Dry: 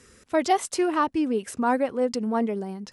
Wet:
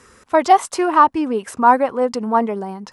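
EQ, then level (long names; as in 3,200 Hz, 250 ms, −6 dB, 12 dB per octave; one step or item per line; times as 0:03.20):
parametric band 1,000 Hz +12 dB 1.2 octaves
+2.5 dB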